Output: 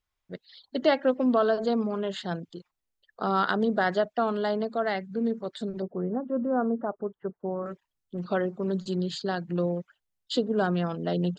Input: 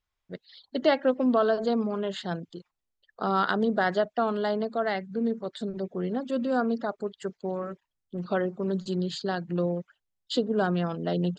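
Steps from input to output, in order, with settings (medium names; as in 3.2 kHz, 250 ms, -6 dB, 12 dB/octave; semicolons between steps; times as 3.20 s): 5.82–7.66 s: low-pass 1.3 kHz 24 dB/octave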